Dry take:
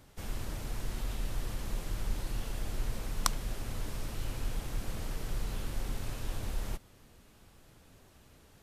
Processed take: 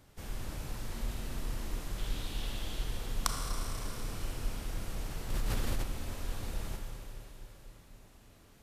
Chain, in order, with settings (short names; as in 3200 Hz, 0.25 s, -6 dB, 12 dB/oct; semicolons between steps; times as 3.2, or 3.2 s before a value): 1.98–2.84 bell 3400 Hz +10 dB 0.71 oct; Schroeder reverb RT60 3.8 s, combs from 27 ms, DRR 1.5 dB; 5.3–5.84 fast leveller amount 100%; gain -3 dB